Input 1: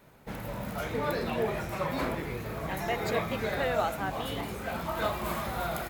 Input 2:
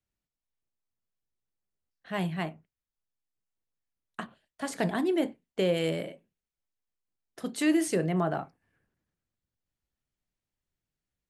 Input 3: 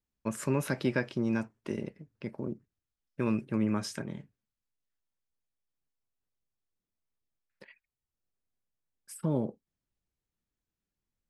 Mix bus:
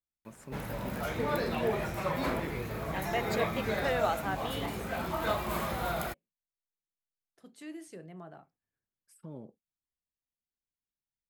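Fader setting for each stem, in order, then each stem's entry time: -0.5, -19.5, -15.5 dB; 0.25, 0.00, 0.00 s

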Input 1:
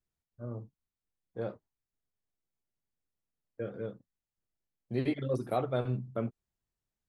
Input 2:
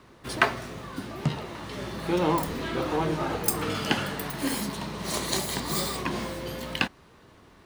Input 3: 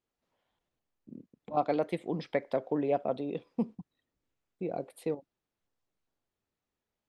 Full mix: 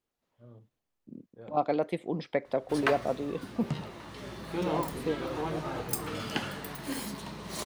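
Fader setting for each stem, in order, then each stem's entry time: -12.5, -7.0, +1.0 dB; 0.00, 2.45, 0.00 s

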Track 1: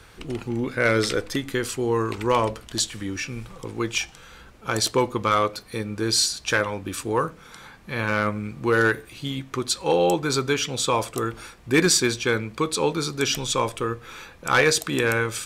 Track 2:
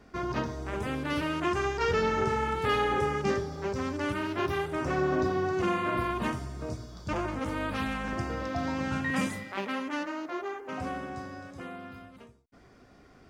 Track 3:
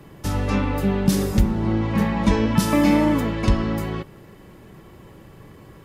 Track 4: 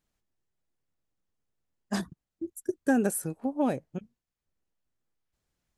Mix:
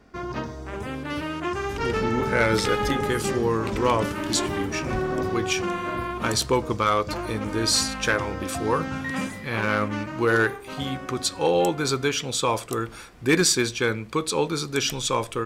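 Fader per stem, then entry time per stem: -1.0, +0.5, -15.0, -13.0 dB; 1.55, 0.00, 1.45, 0.00 s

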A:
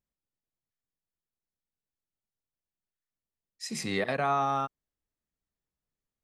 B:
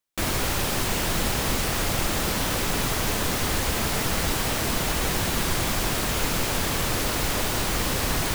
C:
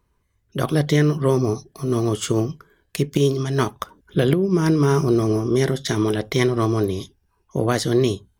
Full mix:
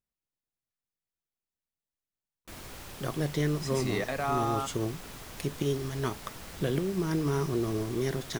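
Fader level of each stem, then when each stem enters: -3.0, -19.5, -11.5 dB; 0.00, 2.30, 2.45 s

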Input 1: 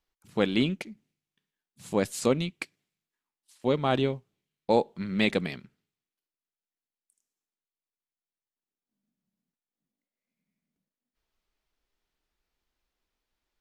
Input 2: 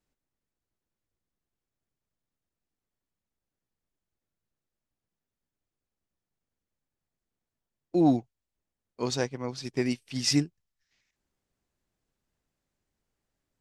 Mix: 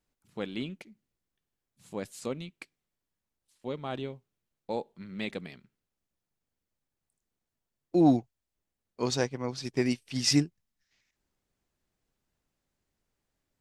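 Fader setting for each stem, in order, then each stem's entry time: -10.5, +0.5 dB; 0.00, 0.00 s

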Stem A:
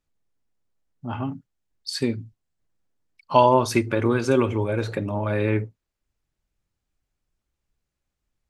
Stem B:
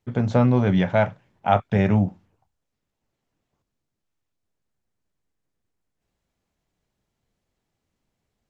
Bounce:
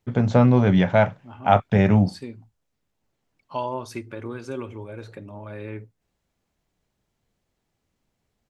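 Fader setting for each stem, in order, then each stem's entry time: -12.5, +2.0 dB; 0.20, 0.00 s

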